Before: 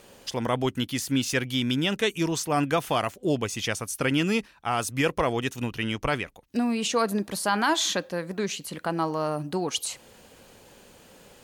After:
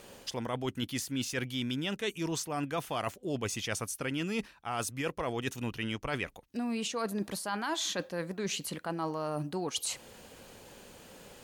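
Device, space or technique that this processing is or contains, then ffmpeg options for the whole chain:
compression on the reversed sound: -af "areverse,acompressor=threshold=0.0282:ratio=6,areverse"

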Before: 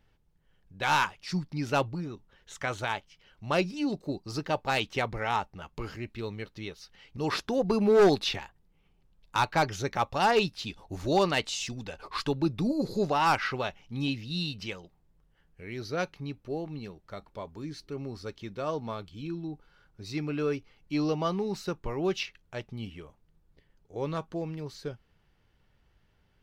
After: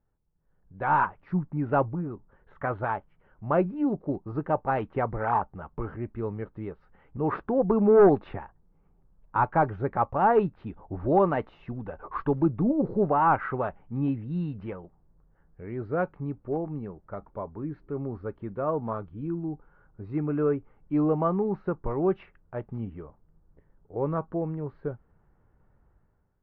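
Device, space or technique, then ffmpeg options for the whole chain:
action camera in a waterproof case: -af "lowpass=f=1400:w=0.5412,lowpass=f=1400:w=1.3066,dynaudnorm=f=170:g=7:m=4.47,volume=0.376" -ar 48000 -c:a aac -b:a 48k

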